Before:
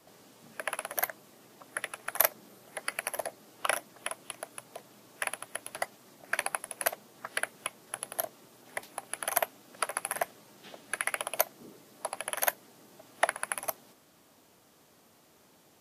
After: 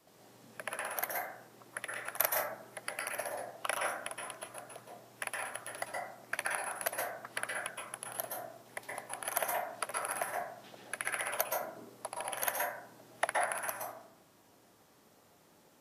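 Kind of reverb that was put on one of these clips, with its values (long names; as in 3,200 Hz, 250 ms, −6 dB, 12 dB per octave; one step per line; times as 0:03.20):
dense smooth reverb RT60 0.69 s, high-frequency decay 0.35×, pre-delay 110 ms, DRR −2 dB
level −6 dB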